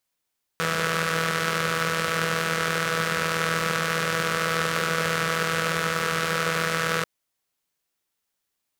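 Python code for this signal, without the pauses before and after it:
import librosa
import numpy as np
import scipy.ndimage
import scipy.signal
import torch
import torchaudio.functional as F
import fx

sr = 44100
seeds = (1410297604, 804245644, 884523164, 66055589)

y = fx.engine_four(sr, seeds[0], length_s=6.44, rpm=4900, resonances_hz=(180.0, 490.0, 1300.0))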